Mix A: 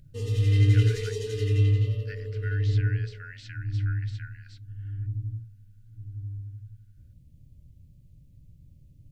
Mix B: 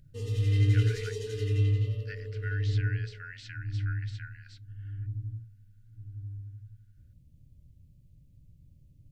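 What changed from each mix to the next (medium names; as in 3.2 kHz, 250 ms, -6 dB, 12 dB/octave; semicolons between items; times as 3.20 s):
background -4.0 dB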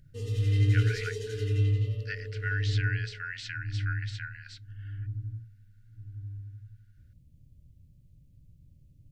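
speech +7.5 dB; master: add peaking EQ 1 kHz -5.5 dB 0.41 oct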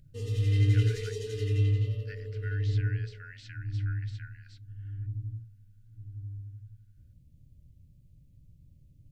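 speech -11.0 dB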